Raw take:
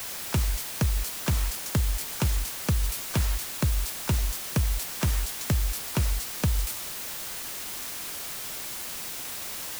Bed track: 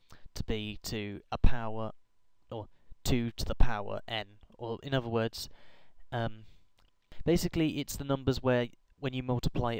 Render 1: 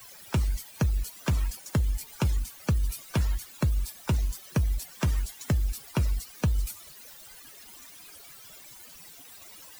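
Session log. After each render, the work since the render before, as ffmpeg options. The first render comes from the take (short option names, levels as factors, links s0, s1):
-af "afftdn=nr=17:nf=-36"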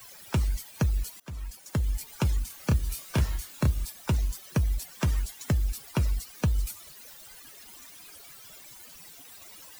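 -filter_complex "[0:a]asettb=1/sr,asplit=3[s0][s1][s2];[s0]atrim=end=2.474[s3];[s1]atrim=start=2.47:end=3.85,asetpts=PTS-STARTPTS,afade=t=in:d=0.004:c=qsin,afade=t=out:st=1.376:d=0.004:c=qsin,asplit=2[s4][s5];[s5]adelay=29,volume=0.596[s6];[s4][s6]amix=inputs=2:normalize=0,atrim=end_sample=60858[s7];[s2]atrim=start=3.846[s8];[s3][s7]acrossfade=d=0.004:c1=hsin:c2=qsin[s9];[s9][s8]acrossfade=d=0.004:c1=qsin:c2=hsin,asplit=2[s10][s11];[s10]atrim=end=1.2,asetpts=PTS-STARTPTS,afade=t=out:st=1.196:d=0.004:c=hsin:silence=0.0707946[s12];[s11]atrim=start=1.2,asetpts=PTS-STARTPTS,afade=t=in:d=0.76:silence=0.0707946[s13];[s12][s13]concat=n=2:v=0:a=1"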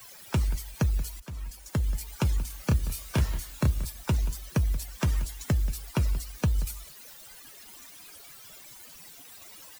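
-filter_complex "[0:a]asplit=2[s0][s1];[s1]adelay=180.8,volume=0.158,highshelf=f=4000:g=-4.07[s2];[s0][s2]amix=inputs=2:normalize=0"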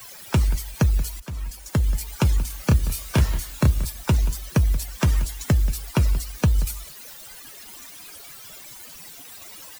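-af "volume=2.11"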